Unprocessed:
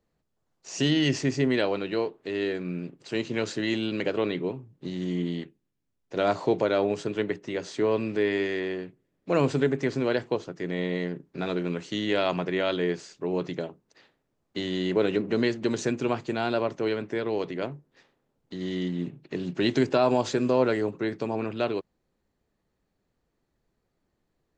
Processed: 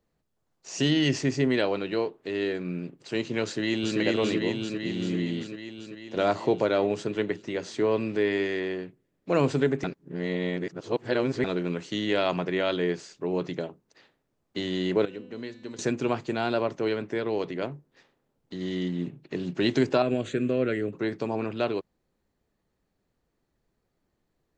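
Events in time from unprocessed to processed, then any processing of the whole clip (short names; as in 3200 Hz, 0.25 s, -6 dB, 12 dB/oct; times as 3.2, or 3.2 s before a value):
3.44–3.99 echo throw 0.39 s, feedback 70%, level -0.5 dB
9.84–11.44 reverse
15.05–15.79 resonator 250 Hz, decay 1.1 s, mix 80%
20.02–20.93 fixed phaser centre 2200 Hz, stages 4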